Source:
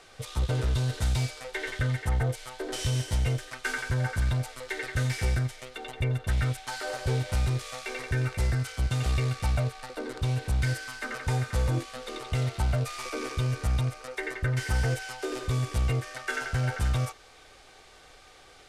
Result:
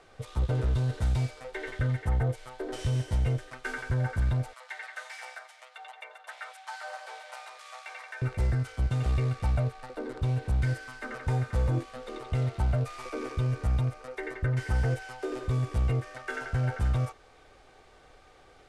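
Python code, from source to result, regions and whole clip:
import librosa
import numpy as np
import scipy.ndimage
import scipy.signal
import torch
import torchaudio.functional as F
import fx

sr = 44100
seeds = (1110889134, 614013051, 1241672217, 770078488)

y = fx.chain(x, sr, fx.steep_highpass(hz=680.0, slope=36),
    fx.high_shelf(hz=11000.0, db=-4.0), at=(4.53, 8.22))
y = scipy.signal.sosfilt(scipy.signal.cheby1(5, 1.0, 12000.0, 'lowpass', fs=sr, output='sos'), y)
y = fx.high_shelf(y, sr, hz=2100.0, db=-11.0)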